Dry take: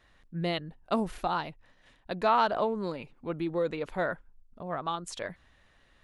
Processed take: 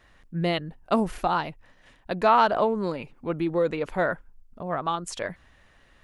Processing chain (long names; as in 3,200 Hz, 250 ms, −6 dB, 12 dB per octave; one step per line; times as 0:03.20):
parametric band 3,800 Hz −4 dB 0.41 octaves
level +5.5 dB